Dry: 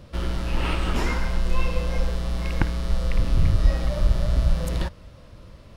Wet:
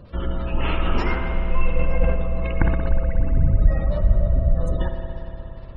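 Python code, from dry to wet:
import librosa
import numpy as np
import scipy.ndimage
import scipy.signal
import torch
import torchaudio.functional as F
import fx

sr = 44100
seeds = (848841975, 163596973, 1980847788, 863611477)

y = fx.spec_gate(x, sr, threshold_db=-30, keep='strong')
y = fx.rev_spring(y, sr, rt60_s=3.7, pass_ms=(59,), chirp_ms=75, drr_db=3.5)
y = fx.sustainer(y, sr, db_per_s=43.0, at=(1.7, 3.0))
y = y * librosa.db_to_amplitude(1.5)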